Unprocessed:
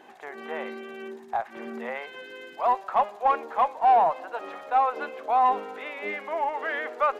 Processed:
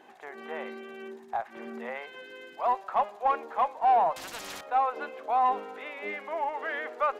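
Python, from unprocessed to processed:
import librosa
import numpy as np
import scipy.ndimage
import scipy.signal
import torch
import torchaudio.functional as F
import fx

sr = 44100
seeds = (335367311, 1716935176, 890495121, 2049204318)

y = fx.spectral_comp(x, sr, ratio=4.0, at=(4.16, 4.61))
y = y * librosa.db_to_amplitude(-3.5)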